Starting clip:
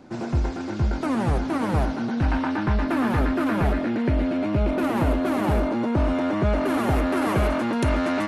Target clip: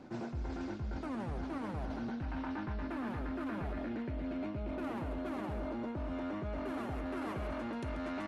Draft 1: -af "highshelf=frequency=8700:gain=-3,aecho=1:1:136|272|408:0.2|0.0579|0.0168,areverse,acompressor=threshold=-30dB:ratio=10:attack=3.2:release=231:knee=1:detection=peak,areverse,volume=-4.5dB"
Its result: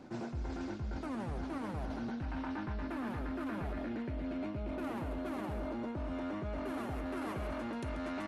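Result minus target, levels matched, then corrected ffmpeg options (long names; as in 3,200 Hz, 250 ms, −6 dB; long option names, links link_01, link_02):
8,000 Hz band +3.5 dB
-af "highshelf=frequency=8700:gain=-11.5,aecho=1:1:136|272|408:0.2|0.0579|0.0168,areverse,acompressor=threshold=-30dB:ratio=10:attack=3.2:release=231:knee=1:detection=peak,areverse,volume=-4.5dB"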